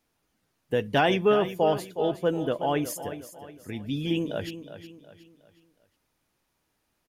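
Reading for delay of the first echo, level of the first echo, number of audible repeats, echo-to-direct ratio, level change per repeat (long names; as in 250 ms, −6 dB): 365 ms, −12.0 dB, 3, −11.5 dB, −8.0 dB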